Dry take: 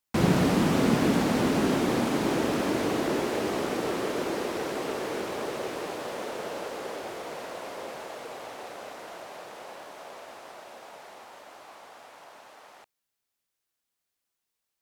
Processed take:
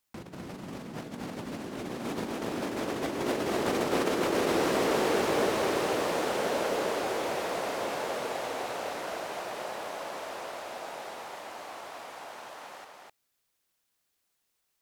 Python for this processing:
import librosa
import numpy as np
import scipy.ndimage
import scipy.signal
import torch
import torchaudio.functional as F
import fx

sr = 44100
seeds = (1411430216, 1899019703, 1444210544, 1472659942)

y = fx.over_compress(x, sr, threshold_db=-31.0, ratio=-0.5)
y = y + 10.0 ** (-3.0 / 20.0) * np.pad(y, (int(254 * sr / 1000.0), 0))[:len(y)]